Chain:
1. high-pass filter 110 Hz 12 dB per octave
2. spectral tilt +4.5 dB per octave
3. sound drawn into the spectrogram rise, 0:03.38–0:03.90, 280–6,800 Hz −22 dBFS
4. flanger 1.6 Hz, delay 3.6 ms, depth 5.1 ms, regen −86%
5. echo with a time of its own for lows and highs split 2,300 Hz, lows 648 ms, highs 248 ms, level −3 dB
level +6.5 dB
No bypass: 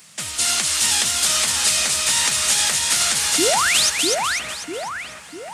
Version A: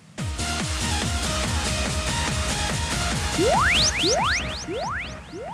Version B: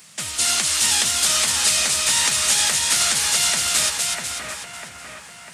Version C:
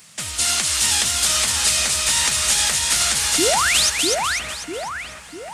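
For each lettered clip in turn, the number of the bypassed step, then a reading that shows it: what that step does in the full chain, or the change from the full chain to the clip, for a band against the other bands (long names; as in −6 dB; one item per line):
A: 2, 125 Hz band +15.5 dB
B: 3, 500 Hz band −7.0 dB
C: 1, 125 Hz band +4.5 dB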